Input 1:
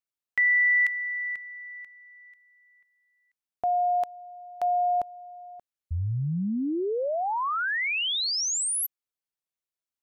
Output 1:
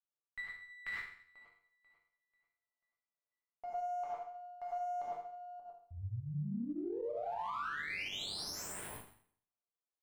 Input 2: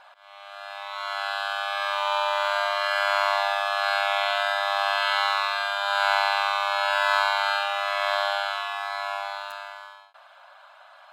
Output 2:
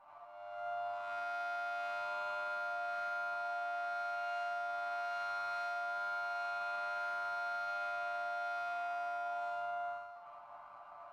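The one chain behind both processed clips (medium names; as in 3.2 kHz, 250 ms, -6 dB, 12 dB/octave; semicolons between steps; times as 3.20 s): local Wiener filter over 25 samples; peaking EQ 1.3 kHz +14 dB 2.6 oct; reverse; compression 4:1, threshold -27 dBFS; reverse; band-stop 6.6 kHz, Q 12; chord resonator G2 minor, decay 0.57 s; gated-style reverb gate 130 ms rising, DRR -4 dB; peak limiter -35 dBFS; sliding maximum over 3 samples; trim +2.5 dB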